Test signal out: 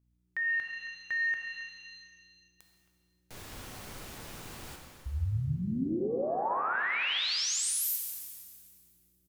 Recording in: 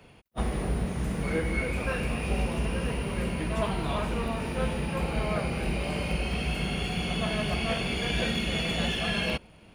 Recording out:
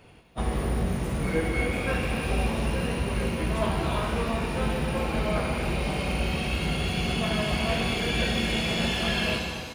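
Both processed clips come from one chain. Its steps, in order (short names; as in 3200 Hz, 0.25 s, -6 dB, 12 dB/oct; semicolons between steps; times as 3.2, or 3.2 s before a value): speakerphone echo 0.27 s, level -14 dB; hum 60 Hz, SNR 35 dB; shimmer reverb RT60 1.8 s, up +7 st, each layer -8 dB, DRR 2 dB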